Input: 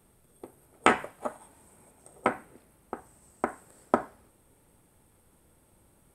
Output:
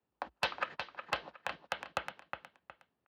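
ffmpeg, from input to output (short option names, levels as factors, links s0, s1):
-filter_complex "[0:a]lowpass=f=2200:w=0.5412,lowpass=f=2200:w=1.3066,equalizer=f=990:w=3.5:g=-3.5,agate=range=0.0224:threshold=0.00224:ratio=16:detection=peak,acompressor=threshold=0.00631:ratio=3,asplit=2[s0][s1];[s1]aecho=0:1:728|1456|2184:0.316|0.0917|0.0266[s2];[s0][s2]amix=inputs=2:normalize=0,volume=37.6,asoftclip=hard,volume=0.0266,afreqshift=28,asetrate=88200,aresample=44100,volume=3.55"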